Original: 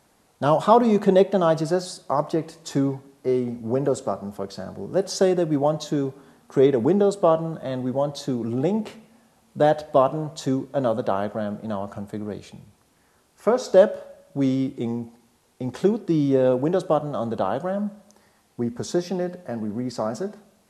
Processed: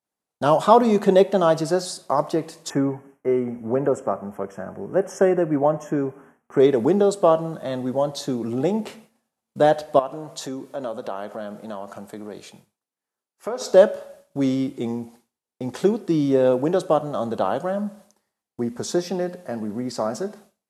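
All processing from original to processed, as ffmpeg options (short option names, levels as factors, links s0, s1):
-filter_complex "[0:a]asettb=1/sr,asplit=3[s0][s1][s2];[s0]atrim=end=2.704[s3];[s1]atrim=start=2.7:end=6.6,asetpts=PTS-STARTPTS,afade=t=in:d=0.004:c=qsin,afade=t=out:st=3.896:d=0.004:c=qsin,asuperstop=centerf=4200:order=12:qfactor=2,highshelf=f=2700:t=q:w=1.5:g=-9.5[s4];[s2]atrim=start=6.596[s5];[s3][s4]acrossfade=d=0.004:c1=hsin:c2=qsin[s6];[s6][s5]acrossfade=d=0.004:c1=qsin:c2=hsin,asettb=1/sr,asplit=3[s7][s8][s9];[s7]atrim=end=9.994[s10];[s8]atrim=start=9.99:end=13.61,asetpts=PTS-STARTPTS,afade=t=in:d=0.004:c=qsin,afade=t=out:st=3.616:d=0.004:c=qsin,highpass=f=230:p=1,acompressor=threshold=0.0251:ratio=2:attack=3.2:release=140:knee=1:detection=peak[s11];[s9]atrim=start=13.606[s12];[s10][s11]acrossfade=d=0.004:c1=hsin:c2=qsin[s13];[s13][s12]acrossfade=d=0.004:c1=qsin:c2=hsin,lowshelf=f=110:g=-11,agate=range=0.0224:threshold=0.00562:ratio=3:detection=peak,highshelf=f=7900:g=5.5,volume=1.26"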